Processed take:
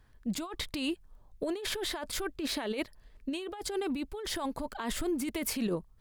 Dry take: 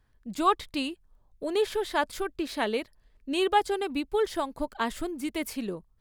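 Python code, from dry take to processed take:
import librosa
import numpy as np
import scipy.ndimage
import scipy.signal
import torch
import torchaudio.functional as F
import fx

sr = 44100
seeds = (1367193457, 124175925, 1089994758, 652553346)

y = fx.over_compress(x, sr, threshold_db=-34.0, ratio=-1.0)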